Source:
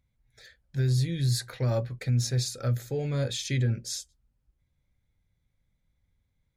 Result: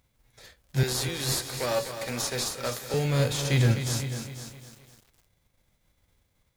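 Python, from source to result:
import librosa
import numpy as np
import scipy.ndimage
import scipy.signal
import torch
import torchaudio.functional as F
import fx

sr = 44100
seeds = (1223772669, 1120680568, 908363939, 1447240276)

p1 = fx.envelope_flatten(x, sr, power=0.6)
p2 = fx.highpass(p1, sr, hz=370.0, slope=12, at=(0.83, 2.94))
p3 = fx.sample_hold(p2, sr, seeds[0], rate_hz=2300.0, jitter_pct=0)
p4 = p2 + (p3 * 10.0 ** (-9.0 / 20.0))
p5 = p4 + 10.0 ** (-14.0 / 20.0) * np.pad(p4, (int(490 * sr / 1000.0), 0))[:len(p4)]
p6 = fx.echo_crushed(p5, sr, ms=256, feedback_pct=55, bits=8, wet_db=-9.0)
y = p6 * 10.0 ** (1.5 / 20.0)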